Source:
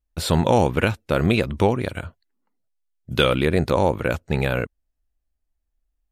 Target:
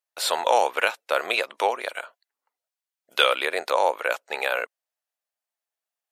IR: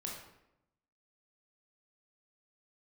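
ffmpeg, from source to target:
-af "highpass=frequency=580:width=0.5412,highpass=frequency=580:width=1.3066,volume=2dB"

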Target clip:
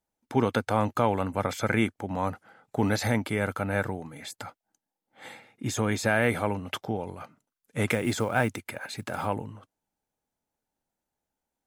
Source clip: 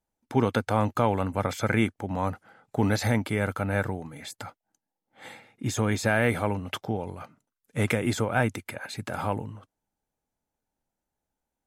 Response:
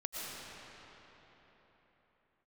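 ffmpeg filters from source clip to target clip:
-filter_complex "[0:a]lowshelf=frequency=100:gain=-6.5,asettb=1/sr,asplit=3[link_01][link_02][link_03];[link_01]atrim=end=7.894[link_04];[link_02]atrim=start=7.89:end=9.26,asetpts=PTS-STARTPTS,afade=type=in:duration=0.004:curve=qsin,afade=type=out:start_time=1.366:duration=0.004:curve=qsin,acrusher=bits=7:mode=log:mix=0:aa=0.000001[link_05];[link_03]atrim=start=9.256[link_06];[link_04][link_05]acrossfade=duration=0.004:curve1=hsin:curve2=qsin[link_07];[link_07][link_06]acrossfade=duration=0.004:curve1=qsin:curve2=hsin"

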